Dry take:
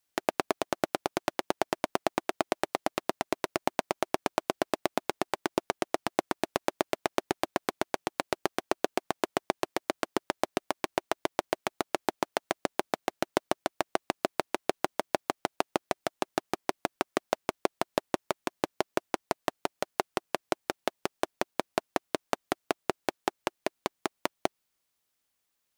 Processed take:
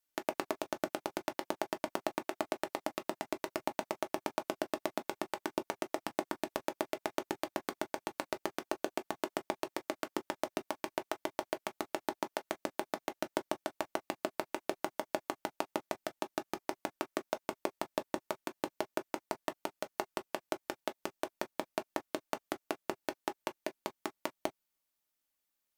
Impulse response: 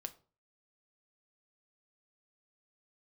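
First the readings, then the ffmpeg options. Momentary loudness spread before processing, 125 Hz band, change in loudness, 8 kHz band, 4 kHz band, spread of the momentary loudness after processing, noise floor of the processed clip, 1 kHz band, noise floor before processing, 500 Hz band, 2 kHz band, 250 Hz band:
4 LU, -8.5 dB, -6.5 dB, -6.5 dB, -7.0 dB, 4 LU, -85 dBFS, -7.0 dB, -80 dBFS, -6.0 dB, -6.5 dB, -5.5 dB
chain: -filter_complex "[0:a]equalizer=f=14000:w=1.5:g=6[s0];[1:a]atrim=start_sample=2205,atrim=end_sample=3528,asetrate=74970,aresample=44100[s1];[s0][s1]afir=irnorm=-1:irlink=0,volume=1.12"

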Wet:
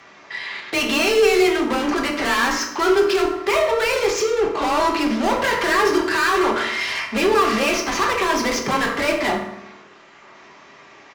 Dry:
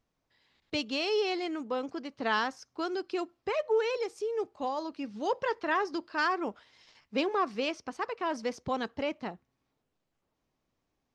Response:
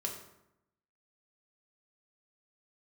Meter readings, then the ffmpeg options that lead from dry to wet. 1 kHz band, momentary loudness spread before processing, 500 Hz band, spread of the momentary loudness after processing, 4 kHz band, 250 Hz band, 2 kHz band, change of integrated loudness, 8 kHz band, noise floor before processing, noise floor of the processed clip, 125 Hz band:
+12.5 dB, 7 LU, +13.0 dB, 6 LU, +14.5 dB, +13.5 dB, +15.5 dB, +13.5 dB, +24.0 dB, -82 dBFS, -47 dBFS, no reading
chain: -filter_complex "[0:a]equalizer=f=250:t=o:w=1:g=4,equalizer=f=1000:t=o:w=1:g=4,equalizer=f=2000:t=o:w=1:g=10,aresample=16000,asoftclip=type=tanh:threshold=0.0376,aresample=44100,asplit=2[s0][s1];[s1]highpass=f=720:p=1,volume=25.1,asoftclip=type=tanh:threshold=0.0473[s2];[s0][s2]amix=inputs=2:normalize=0,lowpass=f=5400:p=1,volume=0.501,afreqshift=19,asplit=2[s3][s4];[s4]asoftclip=type=hard:threshold=0.02,volume=0.562[s5];[s3][s5]amix=inputs=2:normalize=0[s6];[1:a]atrim=start_sample=2205[s7];[s6][s7]afir=irnorm=-1:irlink=0,volume=2.66"

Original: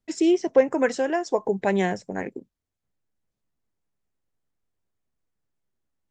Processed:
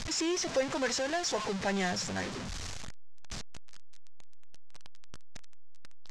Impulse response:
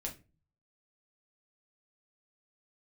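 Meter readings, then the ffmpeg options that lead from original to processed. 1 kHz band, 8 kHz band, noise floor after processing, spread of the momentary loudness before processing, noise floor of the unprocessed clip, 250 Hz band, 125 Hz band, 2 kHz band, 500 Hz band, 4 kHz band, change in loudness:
-6.5 dB, +6.5 dB, -39 dBFS, 12 LU, -84 dBFS, -10.5 dB, -4.5 dB, -3.5 dB, -11.0 dB, +6.0 dB, -9.5 dB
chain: -filter_complex "[0:a]aeval=exprs='val(0)+0.5*0.0668*sgn(val(0))':c=same,asplit=2[s0][s1];[s1]acrusher=samples=9:mix=1:aa=0.000001:lfo=1:lforange=5.4:lforate=2.7,volume=0.266[s2];[s0][s2]amix=inputs=2:normalize=0,lowpass=f=6400:w=0.5412,lowpass=f=6400:w=1.3066,equalizer=f=360:w=0.79:g=-8,crystalizer=i=2:c=0,asoftclip=type=tanh:threshold=0.316,volume=0.376"

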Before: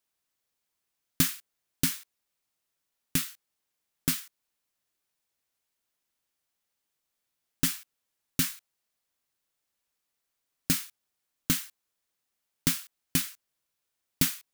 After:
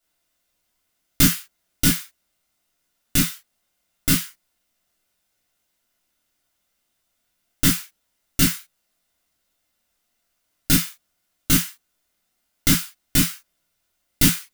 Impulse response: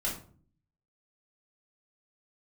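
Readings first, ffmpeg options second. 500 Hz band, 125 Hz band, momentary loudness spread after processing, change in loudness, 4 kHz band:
+10.0 dB, +11.0 dB, 13 LU, +9.5 dB, +9.5 dB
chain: -filter_complex "[1:a]atrim=start_sample=2205,atrim=end_sample=3528[s0];[0:a][s0]afir=irnorm=-1:irlink=0,volume=1.88"

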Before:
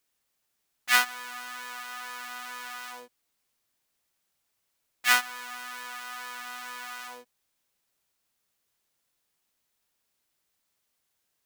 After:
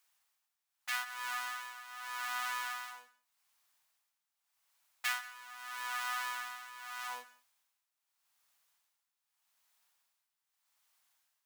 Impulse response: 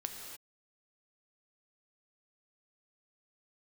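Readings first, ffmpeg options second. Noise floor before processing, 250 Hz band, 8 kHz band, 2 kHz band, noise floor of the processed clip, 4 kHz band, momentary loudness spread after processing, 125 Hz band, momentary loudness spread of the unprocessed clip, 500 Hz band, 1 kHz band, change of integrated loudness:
-78 dBFS, under -15 dB, -9.5 dB, -9.0 dB, under -85 dBFS, -9.5 dB, 11 LU, no reading, 18 LU, -12.5 dB, -5.0 dB, -9.0 dB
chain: -filter_complex "[0:a]lowshelf=f=600:t=q:w=1.5:g=-12,acompressor=threshold=0.02:ratio=5,tremolo=f=0.82:d=0.79,asplit=2[s0][s1];[1:a]atrim=start_sample=2205,asetrate=66150,aresample=44100[s2];[s1][s2]afir=irnorm=-1:irlink=0,volume=0.631[s3];[s0][s3]amix=inputs=2:normalize=0"

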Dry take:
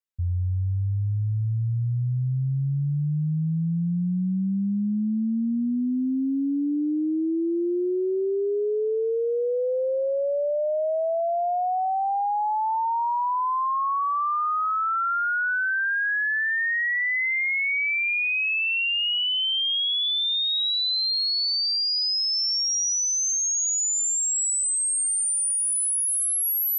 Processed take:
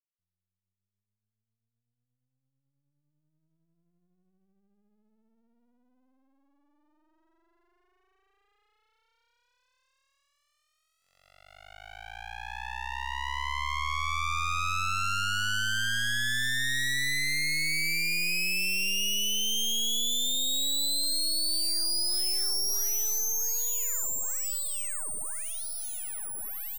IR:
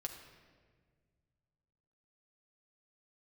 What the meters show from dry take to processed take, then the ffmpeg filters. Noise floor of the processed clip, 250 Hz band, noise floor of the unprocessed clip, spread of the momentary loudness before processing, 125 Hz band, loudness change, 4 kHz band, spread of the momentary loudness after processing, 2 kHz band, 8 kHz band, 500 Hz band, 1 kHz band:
under -85 dBFS, -22.5 dB, -25 dBFS, 5 LU, -18.0 dB, -4.5 dB, -5.0 dB, 9 LU, -6.5 dB, -6.5 dB, -26.5 dB, -11.5 dB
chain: -filter_complex "[0:a]highpass=1100,asplit=2[s0][s1];[s1]adelay=390.7,volume=0.355,highshelf=f=4000:g=-8.79[s2];[s0][s2]amix=inputs=2:normalize=0,aeval=exprs='0.112*(cos(1*acos(clip(val(0)/0.112,-1,1)))-cos(1*PI/2))+0.00708*(cos(4*acos(clip(val(0)/0.112,-1,1)))-cos(4*PI/2))+0.02*(cos(7*acos(clip(val(0)/0.112,-1,1)))-cos(7*PI/2))+0.00794*(cos(8*acos(clip(val(0)/0.112,-1,1)))-cos(8*PI/2))':c=same,dynaudnorm=f=200:g=31:m=2.82,aeval=exprs='max(val(0),0)':c=same,volume=0.422"

